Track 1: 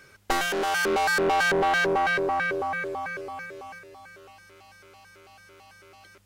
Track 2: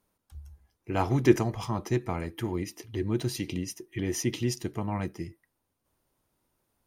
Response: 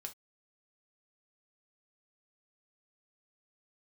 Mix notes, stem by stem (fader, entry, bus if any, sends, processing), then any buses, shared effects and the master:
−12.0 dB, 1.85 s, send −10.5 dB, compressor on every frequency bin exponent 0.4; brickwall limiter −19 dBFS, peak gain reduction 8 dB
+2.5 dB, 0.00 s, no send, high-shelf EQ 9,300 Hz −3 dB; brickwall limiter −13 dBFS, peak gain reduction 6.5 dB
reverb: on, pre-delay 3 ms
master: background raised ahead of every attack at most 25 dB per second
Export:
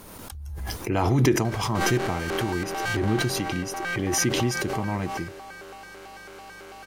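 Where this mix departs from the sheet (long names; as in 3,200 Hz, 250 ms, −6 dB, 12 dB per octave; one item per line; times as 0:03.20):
stem 1: entry 1.85 s → 1.45 s
stem 2: missing high-shelf EQ 9,300 Hz −3 dB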